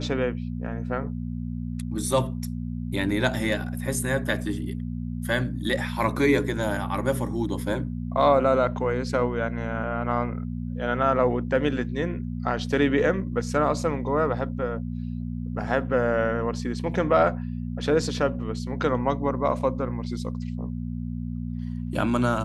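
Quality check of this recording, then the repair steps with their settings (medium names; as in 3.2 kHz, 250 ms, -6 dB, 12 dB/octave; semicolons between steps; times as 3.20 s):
hum 60 Hz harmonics 4 -31 dBFS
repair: de-hum 60 Hz, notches 4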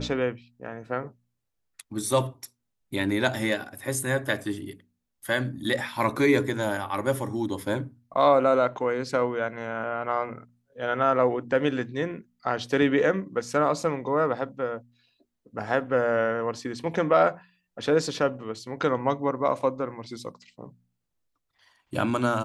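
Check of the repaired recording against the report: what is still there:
nothing left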